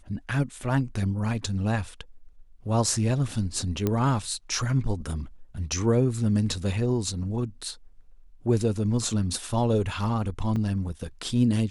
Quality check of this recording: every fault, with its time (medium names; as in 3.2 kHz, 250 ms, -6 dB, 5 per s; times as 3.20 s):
3.87 s: pop -12 dBFS
10.56 s: dropout 4.1 ms